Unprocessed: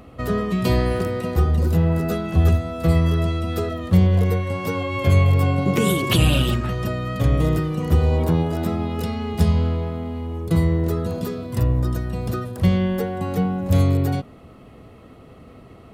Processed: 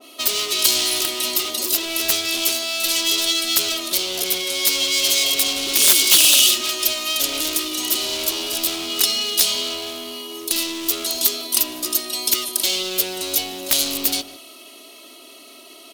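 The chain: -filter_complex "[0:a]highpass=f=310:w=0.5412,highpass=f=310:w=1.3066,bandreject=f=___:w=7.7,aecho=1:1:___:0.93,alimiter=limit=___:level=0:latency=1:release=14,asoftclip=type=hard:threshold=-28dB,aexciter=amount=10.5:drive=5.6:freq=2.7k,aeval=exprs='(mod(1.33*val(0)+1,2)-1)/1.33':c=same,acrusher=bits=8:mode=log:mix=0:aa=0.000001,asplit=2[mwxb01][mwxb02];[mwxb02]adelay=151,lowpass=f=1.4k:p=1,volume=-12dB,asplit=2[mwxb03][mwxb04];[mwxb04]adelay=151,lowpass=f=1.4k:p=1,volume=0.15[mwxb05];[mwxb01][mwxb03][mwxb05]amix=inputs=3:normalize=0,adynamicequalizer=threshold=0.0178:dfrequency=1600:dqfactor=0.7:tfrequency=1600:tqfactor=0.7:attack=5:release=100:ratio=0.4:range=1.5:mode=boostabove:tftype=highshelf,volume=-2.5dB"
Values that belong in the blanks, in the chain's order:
7.6k, 3.1, -12.5dB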